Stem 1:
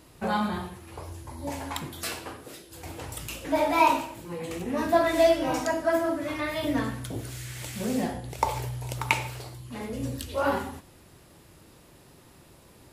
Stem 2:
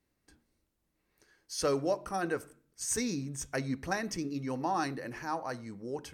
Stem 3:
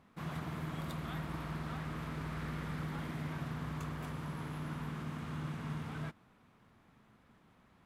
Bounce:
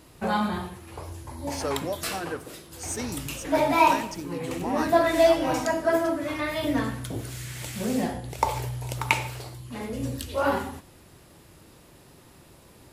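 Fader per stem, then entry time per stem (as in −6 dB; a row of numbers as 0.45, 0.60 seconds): +1.5, −1.0, −12.5 decibels; 0.00, 0.00, 1.75 seconds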